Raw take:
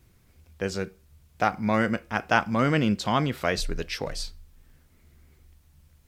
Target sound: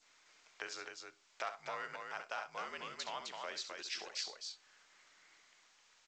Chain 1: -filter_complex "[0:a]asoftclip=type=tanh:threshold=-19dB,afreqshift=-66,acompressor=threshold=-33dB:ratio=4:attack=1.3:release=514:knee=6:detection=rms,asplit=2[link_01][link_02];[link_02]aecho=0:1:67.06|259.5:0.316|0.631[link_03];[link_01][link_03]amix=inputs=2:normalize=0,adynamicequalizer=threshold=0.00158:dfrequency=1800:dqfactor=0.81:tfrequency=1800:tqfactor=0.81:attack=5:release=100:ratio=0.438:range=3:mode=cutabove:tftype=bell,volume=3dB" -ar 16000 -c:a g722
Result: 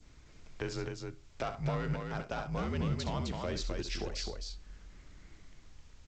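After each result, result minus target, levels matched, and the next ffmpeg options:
soft clipping: distortion +12 dB; 1,000 Hz band −4.0 dB
-filter_complex "[0:a]asoftclip=type=tanh:threshold=-8.5dB,afreqshift=-66,acompressor=threshold=-33dB:ratio=4:attack=1.3:release=514:knee=6:detection=rms,asplit=2[link_01][link_02];[link_02]aecho=0:1:67.06|259.5:0.316|0.631[link_03];[link_01][link_03]amix=inputs=2:normalize=0,adynamicequalizer=threshold=0.00158:dfrequency=1800:dqfactor=0.81:tfrequency=1800:tqfactor=0.81:attack=5:release=100:ratio=0.438:range=3:mode=cutabove:tftype=bell,volume=3dB" -ar 16000 -c:a g722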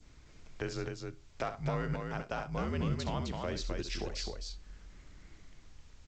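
1,000 Hz band −3.0 dB
-filter_complex "[0:a]asoftclip=type=tanh:threshold=-8.5dB,afreqshift=-66,acompressor=threshold=-33dB:ratio=4:attack=1.3:release=514:knee=6:detection=rms,asplit=2[link_01][link_02];[link_02]aecho=0:1:67.06|259.5:0.316|0.631[link_03];[link_01][link_03]amix=inputs=2:normalize=0,adynamicequalizer=threshold=0.00158:dfrequency=1800:dqfactor=0.81:tfrequency=1800:tqfactor=0.81:attack=5:release=100:ratio=0.438:range=3:mode=cutabove:tftype=bell,highpass=930,volume=3dB" -ar 16000 -c:a g722

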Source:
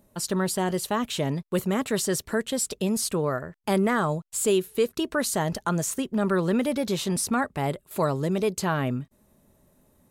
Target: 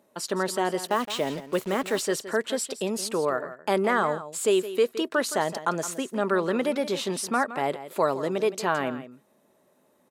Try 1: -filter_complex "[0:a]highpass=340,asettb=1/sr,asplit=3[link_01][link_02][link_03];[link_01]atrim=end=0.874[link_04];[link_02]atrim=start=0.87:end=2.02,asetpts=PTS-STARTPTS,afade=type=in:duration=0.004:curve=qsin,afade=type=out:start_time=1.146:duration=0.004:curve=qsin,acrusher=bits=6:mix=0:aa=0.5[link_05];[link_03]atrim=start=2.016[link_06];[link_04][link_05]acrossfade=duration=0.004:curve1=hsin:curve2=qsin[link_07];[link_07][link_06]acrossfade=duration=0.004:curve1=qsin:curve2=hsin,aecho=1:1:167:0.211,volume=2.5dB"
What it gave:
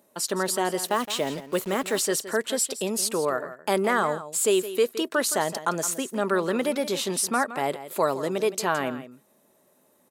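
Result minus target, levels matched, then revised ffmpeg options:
8,000 Hz band +5.5 dB
-filter_complex "[0:a]highpass=340,highshelf=frequency=6700:gain=-11,asettb=1/sr,asplit=3[link_01][link_02][link_03];[link_01]atrim=end=0.874[link_04];[link_02]atrim=start=0.87:end=2.02,asetpts=PTS-STARTPTS,afade=type=in:duration=0.004:curve=qsin,afade=type=out:start_time=1.146:duration=0.004:curve=qsin,acrusher=bits=6:mix=0:aa=0.5[link_05];[link_03]atrim=start=2.016[link_06];[link_04][link_05]acrossfade=duration=0.004:curve1=hsin:curve2=qsin[link_07];[link_07][link_06]acrossfade=duration=0.004:curve1=qsin:curve2=hsin,aecho=1:1:167:0.211,volume=2.5dB"

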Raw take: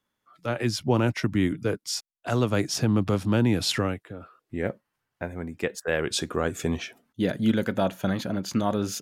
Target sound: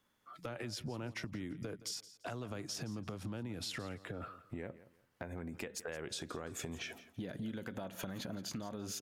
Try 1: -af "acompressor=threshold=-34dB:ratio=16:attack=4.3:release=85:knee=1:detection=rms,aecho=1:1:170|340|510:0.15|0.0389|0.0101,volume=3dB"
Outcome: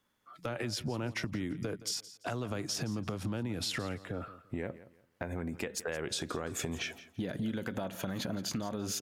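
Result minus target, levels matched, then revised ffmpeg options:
downward compressor: peak gain reduction −6.5 dB
-af "acompressor=threshold=-41dB:ratio=16:attack=4.3:release=85:knee=1:detection=rms,aecho=1:1:170|340|510:0.15|0.0389|0.0101,volume=3dB"

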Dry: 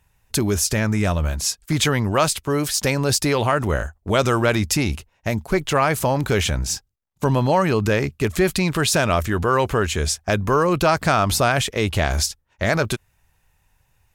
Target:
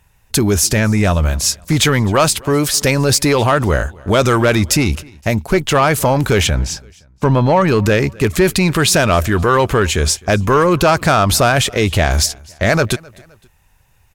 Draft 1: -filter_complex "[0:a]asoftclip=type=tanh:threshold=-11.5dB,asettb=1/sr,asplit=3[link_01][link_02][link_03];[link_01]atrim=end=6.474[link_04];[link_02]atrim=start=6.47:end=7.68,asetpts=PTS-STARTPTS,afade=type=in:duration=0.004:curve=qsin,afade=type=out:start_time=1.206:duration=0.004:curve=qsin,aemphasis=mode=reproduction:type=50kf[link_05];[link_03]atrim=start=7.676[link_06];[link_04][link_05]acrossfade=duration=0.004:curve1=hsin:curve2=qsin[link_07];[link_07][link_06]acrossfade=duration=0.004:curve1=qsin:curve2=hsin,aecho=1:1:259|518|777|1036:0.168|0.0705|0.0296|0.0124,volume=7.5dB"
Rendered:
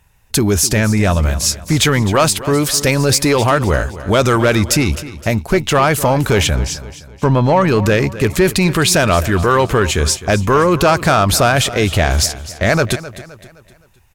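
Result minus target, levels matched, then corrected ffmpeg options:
echo-to-direct +9.5 dB
-filter_complex "[0:a]asoftclip=type=tanh:threshold=-11.5dB,asettb=1/sr,asplit=3[link_01][link_02][link_03];[link_01]atrim=end=6.474[link_04];[link_02]atrim=start=6.47:end=7.68,asetpts=PTS-STARTPTS,afade=type=in:duration=0.004:curve=qsin,afade=type=out:start_time=1.206:duration=0.004:curve=qsin,aemphasis=mode=reproduction:type=50kf[link_05];[link_03]atrim=start=7.676[link_06];[link_04][link_05]acrossfade=duration=0.004:curve1=hsin:curve2=qsin[link_07];[link_07][link_06]acrossfade=duration=0.004:curve1=qsin:curve2=hsin,aecho=1:1:259|518:0.0562|0.0236,volume=7.5dB"

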